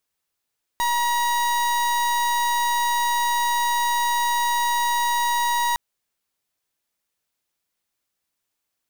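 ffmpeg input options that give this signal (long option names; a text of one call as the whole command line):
ffmpeg -f lavfi -i "aevalsrc='0.0841*(2*lt(mod(955*t,1),0.37)-1)':duration=4.96:sample_rate=44100" out.wav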